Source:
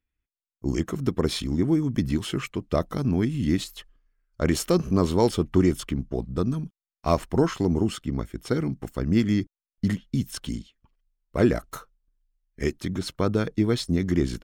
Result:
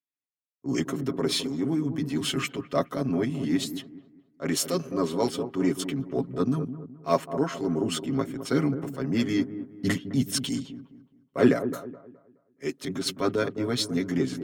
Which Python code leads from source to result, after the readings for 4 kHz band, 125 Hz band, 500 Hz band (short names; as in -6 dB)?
+3.0 dB, -6.0 dB, -1.5 dB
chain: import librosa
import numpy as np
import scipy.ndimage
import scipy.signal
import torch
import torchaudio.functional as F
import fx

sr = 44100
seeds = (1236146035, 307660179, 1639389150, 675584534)

p1 = scipy.signal.sosfilt(scipy.signal.butter(2, 210.0, 'highpass', fs=sr, output='sos'), x)
p2 = fx.notch(p1, sr, hz=860.0, q=12.0)
p3 = p2 + 0.72 * np.pad(p2, (int(7.3 * sr / 1000.0), 0))[:len(p2)]
p4 = fx.rider(p3, sr, range_db=10, speed_s=0.5)
p5 = fx.transient(p4, sr, attack_db=-6, sustain_db=-1)
p6 = p5 + fx.echo_wet_lowpass(p5, sr, ms=211, feedback_pct=45, hz=1000.0, wet_db=-8.5, dry=0)
y = fx.band_widen(p6, sr, depth_pct=40)